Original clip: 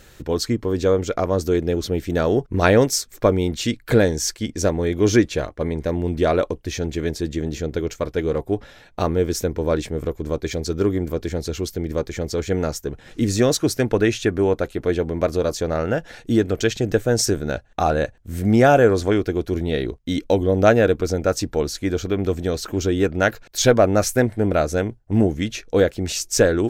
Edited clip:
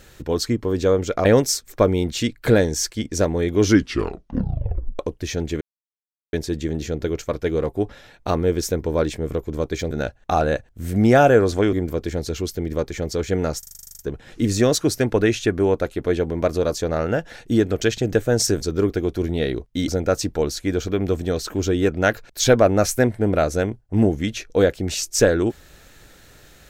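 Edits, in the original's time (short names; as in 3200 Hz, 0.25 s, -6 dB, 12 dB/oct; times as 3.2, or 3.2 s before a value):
1.25–2.69 cut
5.07 tape stop 1.36 s
7.05 insert silence 0.72 s
10.63–10.92 swap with 17.4–19.22
12.78 stutter 0.04 s, 11 plays
20.2–21.06 cut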